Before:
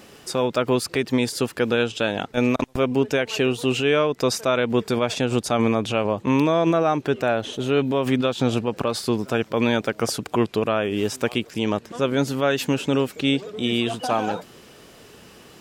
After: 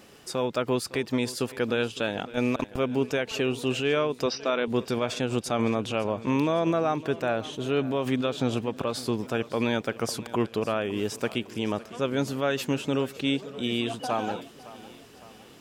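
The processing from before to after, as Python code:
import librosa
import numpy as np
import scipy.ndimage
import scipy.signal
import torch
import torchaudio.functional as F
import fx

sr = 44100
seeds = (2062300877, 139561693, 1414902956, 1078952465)

p1 = fx.brickwall_bandpass(x, sr, low_hz=180.0, high_hz=6000.0, at=(4.26, 4.68))
p2 = p1 + fx.echo_feedback(p1, sr, ms=558, feedback_pct=51, wet_db=-18.0, dry=0)
y = p2 * 10.0 ** (-5.5 / 20.0)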